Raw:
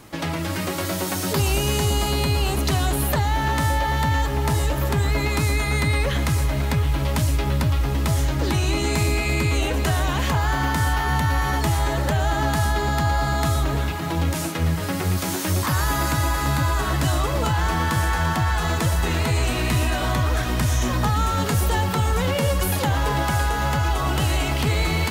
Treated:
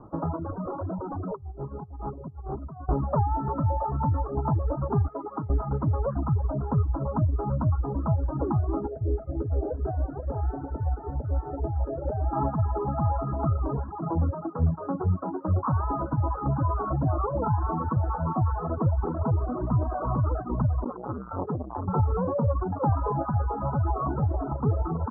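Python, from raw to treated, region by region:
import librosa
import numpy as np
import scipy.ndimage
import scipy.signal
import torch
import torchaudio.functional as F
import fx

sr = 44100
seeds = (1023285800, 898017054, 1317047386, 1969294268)

y = fx.chain(x, sr, fx.high_shelf(hz=2700.0, db=-10.5),
    fx.over_compress(threshold_db=-26.0, ratio=-0.5),
    fx.overload_stage(gain_db=25.5), at=(0.5, 2.89))
y = fx.chain(y, sr, fx.highpass(hz=360.0, slope=6),
    fx.air_absorb(metres=200.0), at=(5.08, 5.5))
y = fx.chain(y, sr, fx.fixed_phaser(hz=440.0, stages=4),
    fx.echo_single(ms=229, db=-10.5), at=(8.87, 12.33))
y = fx.chain(y, sr, fx.high_shelf(hz=4400.0, db=-9.5),
    fx.hum_notches(base_hz=50, count=2),
    fx.transformer_sat(knee_hz=630.0), at=(20.84, 21.88))
y = fx.dereverb_blind(y, sr, rt60_s=0.94)
y = scipy.signal.sosfilt(scipy.signal.butter(12, 1300.0, 'lowpass', fs=sr, output='sos'), y)
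y = fx.dereverb_blind(y, sr, rt60_s=1.3)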